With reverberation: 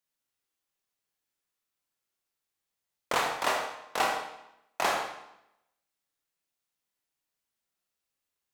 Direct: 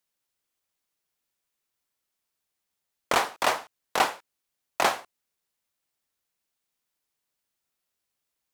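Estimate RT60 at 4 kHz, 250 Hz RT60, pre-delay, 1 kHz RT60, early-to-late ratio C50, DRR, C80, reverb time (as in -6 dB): 0.75 s, 0.95 s, 26 ms, 0.85 s, 3.0 dB, -0.5 dB, 6.5 dB, 0.80 s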